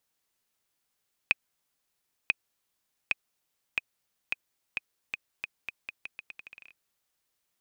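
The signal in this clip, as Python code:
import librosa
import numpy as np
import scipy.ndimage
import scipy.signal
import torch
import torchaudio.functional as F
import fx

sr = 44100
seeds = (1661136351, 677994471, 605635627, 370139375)

y = fx.bouncing_ball(sr, first_gap_s=0.99, ratio=0.82, hz=2510.0, decay_ms=24.0, level_db=-8.0)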